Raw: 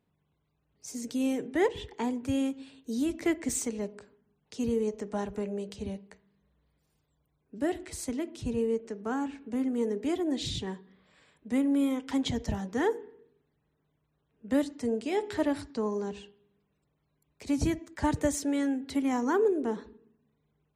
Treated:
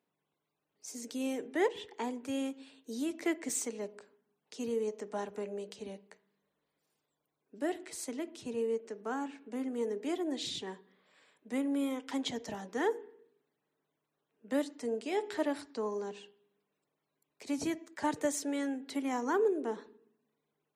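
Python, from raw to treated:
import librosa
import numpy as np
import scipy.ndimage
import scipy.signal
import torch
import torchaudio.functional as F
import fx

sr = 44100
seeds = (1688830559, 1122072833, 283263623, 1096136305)

y = scipy.signal.sosfilt(scipy.signal.butter(2, 310.0, 'highpass', fs=sr, output='sos'), x)
y = F.gain(torch.from_numpy(y), -2.5).numpy()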